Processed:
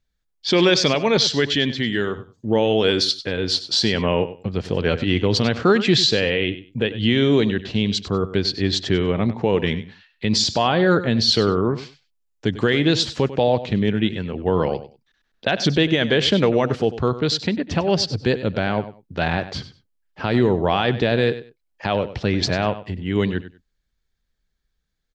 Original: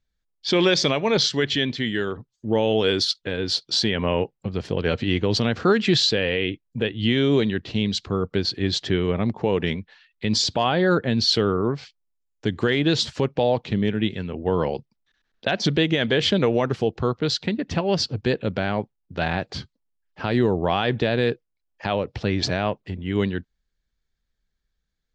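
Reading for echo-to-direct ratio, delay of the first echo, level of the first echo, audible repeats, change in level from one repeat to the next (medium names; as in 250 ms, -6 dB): -14.0 dB, 97 ms, -14.0 dB, 2, -14.5 dB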